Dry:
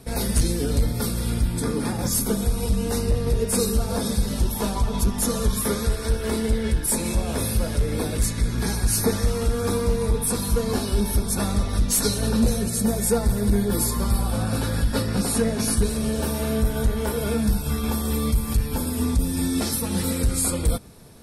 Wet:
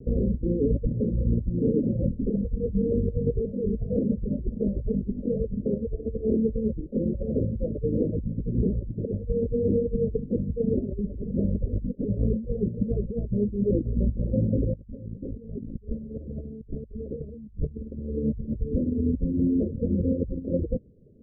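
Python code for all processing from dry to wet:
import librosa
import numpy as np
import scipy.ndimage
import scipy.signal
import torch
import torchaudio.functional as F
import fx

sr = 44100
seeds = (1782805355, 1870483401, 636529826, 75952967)

y = fx.chain(x, sr, fx.tilt_eq(slope=-2.0),
    fx.env_flatten(amount_pct=50), at=(14.74, 17.99))
y = fx.dereverb_blind(y, sr, rt60_s=1.1)
y = fx.over_compress(y, sr, threshold_db=-25.0, ratio=-0.5)
y = scipy.signal.sosfilt(scipy.signal.butter(16, 570.0, 'lowpass', fs=sr, output='sos'), y)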